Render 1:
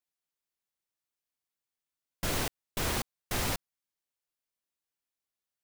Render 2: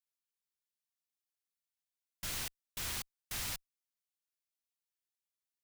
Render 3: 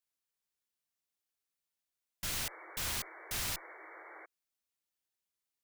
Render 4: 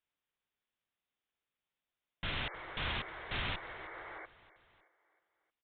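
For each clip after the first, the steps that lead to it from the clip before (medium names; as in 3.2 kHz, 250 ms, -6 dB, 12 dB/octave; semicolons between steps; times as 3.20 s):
amplifier tone stack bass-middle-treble 5-5-5; trim +2 dB
painted sound noise, 2.40–4.26 s, 310–2300 Hz -54 dBFS; trim +2.5 dB
feedback delay 312 ms, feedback 53%, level -18.5 dB; resampled via 8 kHz; trim +4 dB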